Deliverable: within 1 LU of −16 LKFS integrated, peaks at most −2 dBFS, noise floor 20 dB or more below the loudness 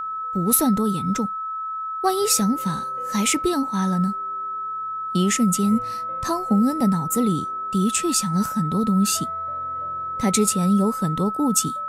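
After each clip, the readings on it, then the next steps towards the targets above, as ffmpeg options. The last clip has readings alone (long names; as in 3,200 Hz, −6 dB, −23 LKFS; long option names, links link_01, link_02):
interfering tone 1,300 Hz; level of the tone −26 dBFS; integrated loudness −22.0 LKFS; sample peak −5.5 dBFS; target loudness −16.0 LKFS
→ -af "bandreject=frequency=1300:width=30"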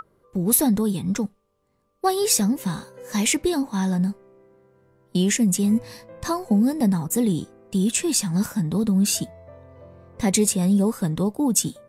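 interfering tone none found; integrated loudness −22.0 LKFS; sample peak −6.0 dBFS; target loudness −16.0 LKFS
→ -af "volume=6dB,alimiter=limit=-2dB:level=0:latency=1"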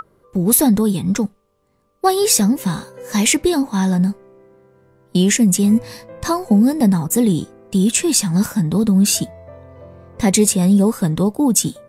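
integrated loudness −16.5 LKFS; sample peak −2.0 dBFS; background noise floor −63 dBFS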